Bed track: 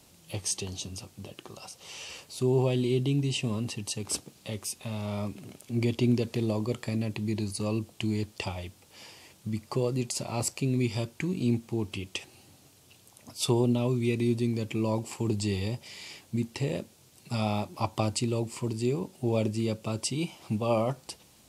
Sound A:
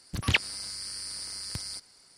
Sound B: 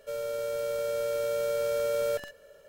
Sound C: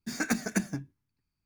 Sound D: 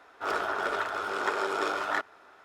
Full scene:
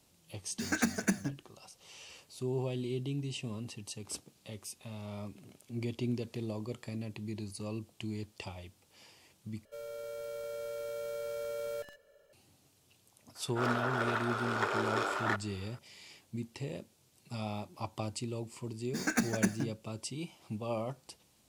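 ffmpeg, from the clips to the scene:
ffmpeg -i bed.wav -i cue0.wav -i cue1.wav -i cue2.wav -i cue3.wav -filter_complex "[3:a]asplit=2[link_01][link_02];[0:a]volume=-9.5dB,asplit=2[link_03][link_04];[link_03]atrim=end=9.654[link_05];[2:a]atrim=end=2.68,asetpts=PTS-STARTPTS,volume=-10dB[link_06];[link_04]atrim=start=12.326[link_07];[link_01]atrim=end=1.45,asetpts=PTS-STARTPTS,volume=-1.5dB,afade=type=in:duration=0.004:curve=hsin,afade=type=out:start_time=1.446:duration=0.004:curve=hsin,adelay=520[link_08];[4:a]atrim=end=2.44,asetpts=PTS-STARTPTS,volume=-3.5dB,afade=type=in:duration=0.004:curve=hsin,afade=type=out:start_time=2.436:duration=0.004:curve=hsin,adelay=13350[link_09];[link_02]atrim=end=1.45,asetpts=PTS-STARTPTS,volume=-1.5dB,afade=type=in:duration=0.004:curve=hsin,afade=type=out:start_time=1.446:duration=0.004:curve=hsin,adelay=18870[link_10];[link_05][link_06]acrossfade=duration=0.004:curve1=hsin:curve2=hsin[link_11];[link_11][link_07]acrossfade=duration=0.004:curve1=hsin:curve2=hsin[link_12];[link_12][link_08][link_09][link_10]amix=inputs=4:normalize=0" out.wav

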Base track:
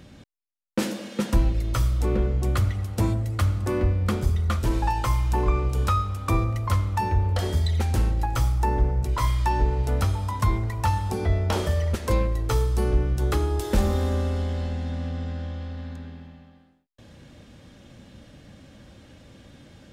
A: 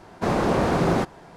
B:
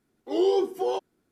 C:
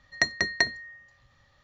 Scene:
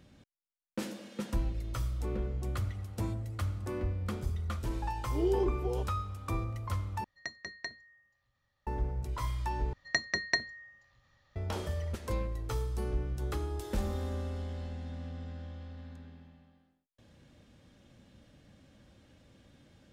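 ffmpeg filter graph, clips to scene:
ffmpeg -i bed.wav -i cue0.wav -i cue1.wav -i cue2.wav -filter_complex "[3:a]asplit=2[link_01][link_02];[0:a]volume=-11.5dB[link_03];[2:a]equalizer=frequency=240:width_type=o:width=1.6:gain=14[link_04];[link_03]asplit=3[link_05][link_06][link_07];[link_05]atrim=end=7.044[link_08];[link_01]atrim=end=1.63,asetpts=PTS-STARTPTS,volume=-16.5dB[link_09];[link_06]atrim=start=8.666:end=9.734[link_10];[link_02]atrim=end=1.63,asetpts=PTS-STARTPTS,volume=-5.5dB[link_11];[link_07]atrim=start=11.356[link_12];[link_04]atrim=end=1.31,asetpts=PTS-STARTPTS,volume=-15.5dB,afade=type=in:duration=0.004:curve=hsin,afade=type=out:start_time=1.306:duration=0.004:curve=hsin,adelay=4840[link_13];[link_08][link_09]acrossfade=duration=0.004:curve1=hsin:curve2=hsin[link_14];[link_14][link_10]acrossfade=duration=0.004:curve1=hsin:curve2=hsin[link_15];[link_15][link_11]acrossfade=duration=0.004:curve1=hsin:curve2=hsin[link_16];[link_16][link_12]acrossfade=duration=0.004:curve1=hsin:curve2=hsin[link_17];[link_17][link_13]amix=inputs=2:normalize=0" out.wav

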